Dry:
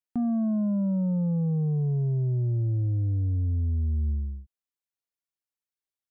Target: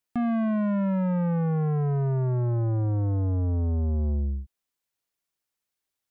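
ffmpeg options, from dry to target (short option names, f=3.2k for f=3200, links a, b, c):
-af "asoftclip=type=tanh:threshold=-31.5dB,volume=8dB"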